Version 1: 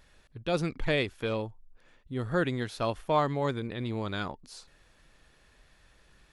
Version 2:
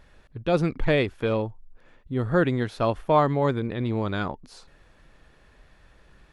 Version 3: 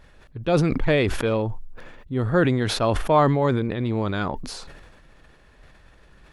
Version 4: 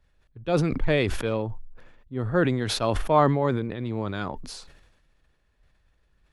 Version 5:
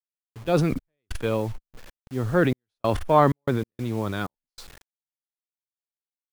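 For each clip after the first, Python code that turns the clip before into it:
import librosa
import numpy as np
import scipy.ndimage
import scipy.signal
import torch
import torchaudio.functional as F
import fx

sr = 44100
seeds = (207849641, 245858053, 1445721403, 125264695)

y1 = fx.high_shelf(x, sr, hz=2800.0, db=-11.0)
y1 = y1 * 10.0 ** (7.0 / 20.0)
y2 = fx.sustainer(y1, sr, db_per_s=35.0)
y2 = y2 * 10.0 ** (1.5 / 20.0)
y3 = fx.band_widen(y2, sr, depth_pct=40)
y3 = y3 * 10.0 ** (-4.0 / 20.0)
y4 = fx.quant_dither(y3, sr, seeds[0], bits=8, dither='none')
y4 = fx.step_gate(y4, sr, bpm=95, pattern='x.xxx..xxx.', floor_db=-60.0, edge_ms=4.5)
y4 = fx.transformer_sat(y4, sr, knee_hz=250.0)
y4 = y4 * 10.0 ** (2.0 / 20.0)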